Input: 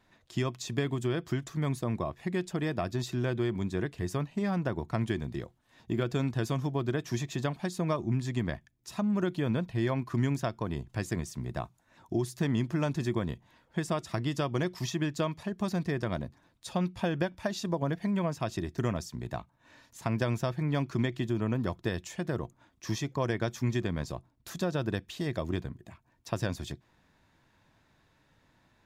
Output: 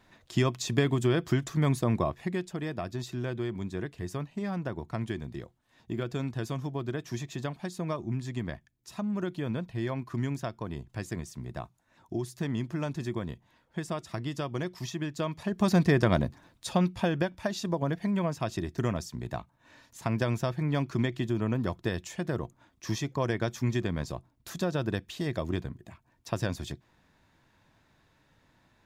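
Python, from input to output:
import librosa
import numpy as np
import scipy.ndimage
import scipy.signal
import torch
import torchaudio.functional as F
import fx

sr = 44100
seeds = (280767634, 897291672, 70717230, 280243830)

y = fx.gain(x, sr, db=fx.line((2.07, 5.0), (2.49, -3.0), (15.14, -3.0), (15.76, 8.5), (16.26, 8.5), (17.28, 1.0)))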